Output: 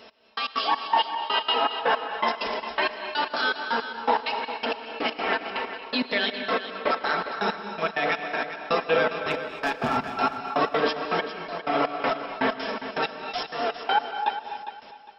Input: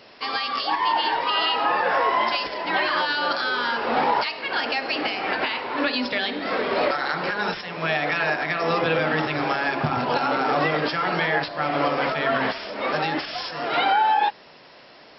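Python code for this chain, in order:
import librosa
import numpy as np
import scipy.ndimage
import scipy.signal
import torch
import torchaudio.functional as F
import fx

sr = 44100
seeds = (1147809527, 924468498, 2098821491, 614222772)

y = fx.peak_eq(x, sr, hz=160.0, db=-10.0, octaves=0.35)
y = fx.step_gate(y, sr, bpm=162, pattern='x...x.xx..', floor_db=-60.0, edge_ms=4.5)
y = fx.peak_eq(y, sr, hz=2000.0, db=-3.0, octaves=0.55)
y = fx.notch(y, sr, hz=4500.0, q=7.9)
y = fx.clip_asym(y, sr, top_db=-22.0, bottom_db=-19.0, at=(9.3, 9.96), fade=0.02)
y = y + 0.52 * np.pad(y, (int(4.5 * sr / 1000.0), 0))[:len(y)]
y = fx.echo_feedback(y, sr, ms=405, feedback_pct=27, wet_db=-11.5)
y = fx.rev_gated(y, sr, seeds[0], gate_ms=290, shape='rising', drr_db=8.5)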